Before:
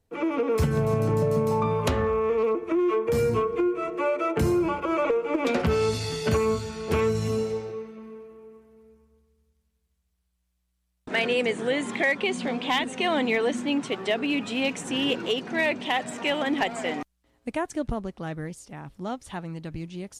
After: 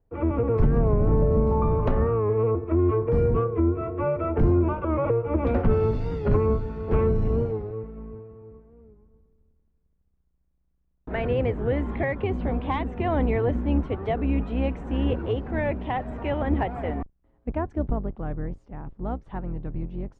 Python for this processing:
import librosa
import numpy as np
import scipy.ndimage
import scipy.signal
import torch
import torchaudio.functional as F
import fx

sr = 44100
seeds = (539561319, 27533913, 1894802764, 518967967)

y = fx.octave_divider(x, sr, octaves=2, level_db=4.0)
y = scipy.signal.sosfilt(scipy.signal.butter(2, 1200.0, 'lowpass', fs=sr, output='sos'), y)
y = fx.record_warp(y, sr, rpm=45.0, depth_cents=100.0)